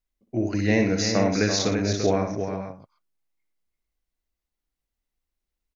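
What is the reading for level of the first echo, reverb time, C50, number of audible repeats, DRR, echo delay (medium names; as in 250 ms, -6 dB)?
-6.5 dB, no reverb, no reverb, 5, no reverb, 58 ms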